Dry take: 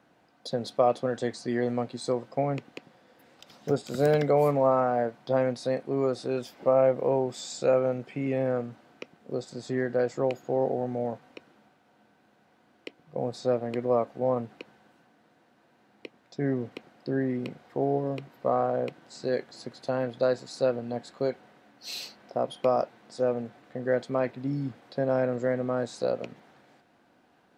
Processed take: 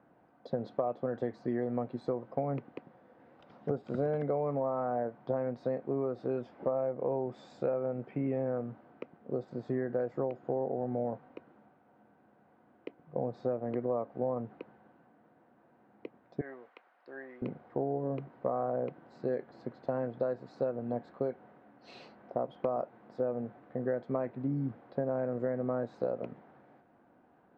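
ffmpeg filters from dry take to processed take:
ffmpeg -i in.wav -filter_complex "[0:a]asettb=1/sr,asplit=3[link_01][link_02][link_03];[link_01]atrim=end=16.414[link_04];[link_02]atrim=start=16.41:end=17.42,asetpts=PTS-STARTPTS,afade=type=in:duration=0.004:curve=qsin,afade=type=out:start_time=1.006:duration=0.004:curve=qsin,highpass=1100[link_05];[link_03]atrim=start=17.416[link_06];[link_04][link_05]acrossfade=duration=0.004:curve1=hsin:curve2=qsin[link_07];[link_07][link_06]acrossfade=duration=0.004:curve1=qsin:curve2=hsin,lowpass=1300,acompressor=threshold=-28dB:ratio=10" out.wav

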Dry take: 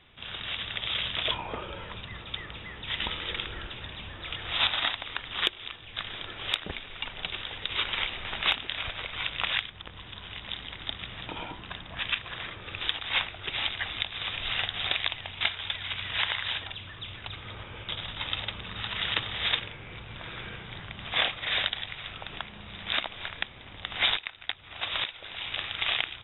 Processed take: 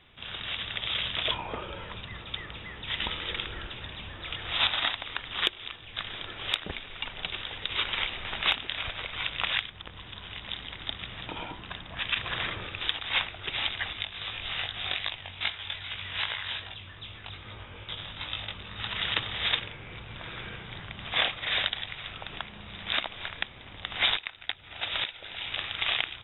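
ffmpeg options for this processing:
ffmpeg -i in.wav -filter_complex "[0:a]asettb=1/sr,asplit=3[link_01][link_02][link_03];[link_01]atrim=end=12.164[link_04];[link_02]atrim=start=12.16:end=12.67,asetpts=PTS-STARTPTS,afade=type=in:duration=0.004:curve=qsin,afade=type=out:start_time=0.506:duration=0.004:curve=qsin,acontrast=50[link_05];[link_03]atrim=start=12.666[link_06];[link_04][link_05]acrossfade=duration=0.004:curve1=hsin:curve2=qsin[link_07];[link_07][link_06]acrossfade=duration=0.004:curve1=qsin:curve2=hsin,asettb=1/sr,asplit=3[link_08][link_09][link_10];[link_08]atrim=end=13.934[link_11];[link_09]atrim=start=13.93:end=18.8,asetpts=PTS-STARTPTS,afade=type=in:duration=0.004:curve=qsin,afade=type=out:start_time=4.866:duration=0.004:curve=qsin,flanger=delay=18.5:depth=2.9:speed=2.5[link_12];[link_10]atrim=start=18.796[link_13];[link_11][link_12]acrossfade=duration=0.004:curve1=hsin:curve2=qsin[link_14];[link_14][link_13]acrossfade=duration=0.004:curve1=qsin:curve2=hsin,asettb=1/sr,asplit=3[link_15][link_16][link_17];[link_15]atrim=end=24.404[link_18];[link_16]atrim=start=24.4:end=25.49,asetpts=PTS-STARTPTS,afade=type=in:duration=0.004:curve=qsin,afade=type=out:start_time=1.086:duration=0.004:curve=qsin,bandreject=frequency=1100:width=7.5[link_19];[link_17]atrim=start=25.486[link_20];[link_18][link_19]acrossfade=duration=0.004:curve1=hsin:curve2=qsin[link_21];[link_21][link_20]acrossfade=duration=0.004:curve1=qsin:curve2=hsin" out.wav

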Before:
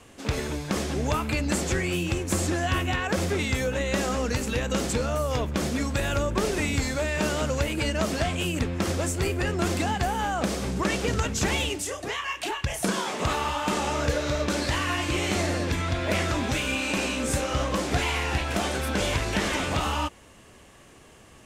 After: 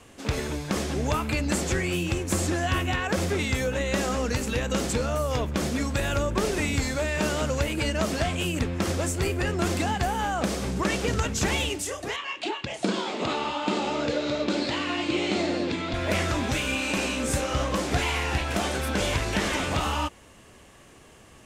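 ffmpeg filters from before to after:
ffmpeg -i in.wav -filter_complex "[0:a]asettb=1/sr,asplit=3[link_01][link_02][link_03];[link_01]atrim=end=12.164[link_04];[link_02]atrim=start=12.16:end=15.94,asetpts=PTS-STARTPTS,afade=type=in:duration=0.004:curve=qsin,afade=type=out:start_time=3.776:duration=0.004:curve=qsin,highpass=180,equalizer=frequency=230:width_type=q:width=4:gain=4,equalizer=frequency=330:width_type=q:width=4:gain=5,equalizer=frequency=1100:width_type=q:width=4:gain=-4,equalizer=frequency=1700:width_type=q:width=4:gain=-6,equalizer=frequency=4000:width_type=q:width=4:gain=3,equalizer=frequency=5900:width_type=q:width=4:gain=-8,lowpass=frequency=6600:width=0.5412,lowpass=frequency=6600:width=1.3066[link_05];[link_03]atrim=start=15.936[link_06];[link_04][link_05]acrossfade=duration=0.004:curve1=hsin:curve2=qsin[link_07];[link_07][link_06]acrossfade=duration=0.004:curve1=qsin:curve2=hsin" out.wav

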